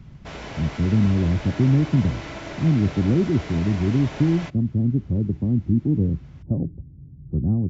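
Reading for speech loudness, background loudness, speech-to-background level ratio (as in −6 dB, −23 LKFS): −22.5 LKFS, −36.0 LKFS, 13.5 dB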